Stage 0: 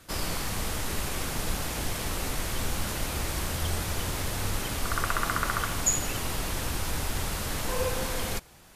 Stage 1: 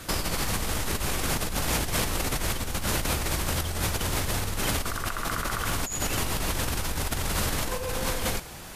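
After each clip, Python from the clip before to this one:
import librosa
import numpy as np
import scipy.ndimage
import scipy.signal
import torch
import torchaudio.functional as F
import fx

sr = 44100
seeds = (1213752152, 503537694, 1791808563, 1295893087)

y = fx.over_compress(x, sr, threshold_db=-35.0, ratio=-1.0)
y = F.gain(torch.from_numpy(y), 7.0).numpy()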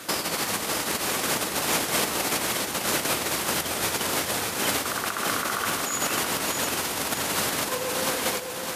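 y = scipy.signal.sosfilt(scipy.signal.butter(2, 240.0, 'highpass', fs=sr, output='sos'), x)
y = fx.echo_feedback(y, sr, ms=608, feedback_pct=36, wet_db=-5.5)
y = F.gain(torch.from_numpy(y), 3.0).numpy()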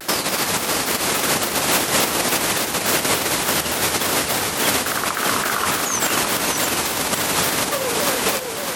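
y = fx.vibrato_shape(x, sr, shape='saw_down', rate_hz=3.5, depth_cents=250.0)
y = F.gain(torch.from_numpy(y), 6.5).numpy()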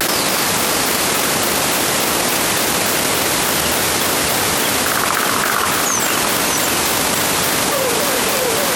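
y = fx.env_flatten(x, sr, amount_pct=100)
y = F.gain(torch.from_numpy(y), -1.0).numpy()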